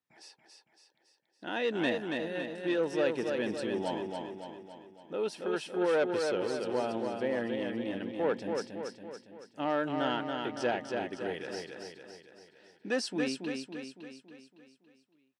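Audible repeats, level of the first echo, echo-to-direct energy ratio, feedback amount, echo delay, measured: 6, -4.5 dB, -3.0 dB, 53%, 280 ms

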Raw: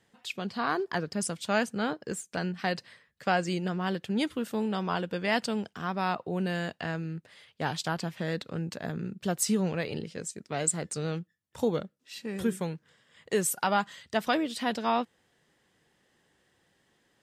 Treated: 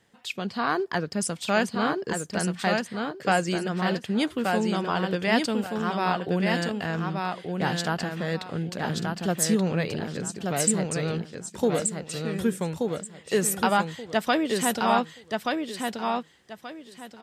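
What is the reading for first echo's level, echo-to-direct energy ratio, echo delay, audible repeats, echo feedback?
-4.0 dB, -3.5 dB, 1179 ms, 3, 24%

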